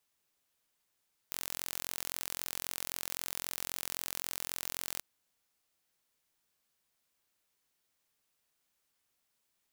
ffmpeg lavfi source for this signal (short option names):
-f lavfi -i "aevalsrc='0.316*eq(mod(n,1007),0)':d=3.68:s=44100"